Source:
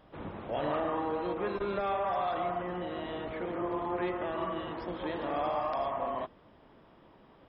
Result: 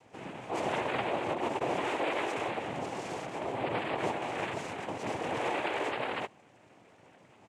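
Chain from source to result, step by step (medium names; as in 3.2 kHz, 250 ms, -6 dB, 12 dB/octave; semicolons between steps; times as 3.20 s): comb 2.1 ms, depth 32%; noise-vocoded speech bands 4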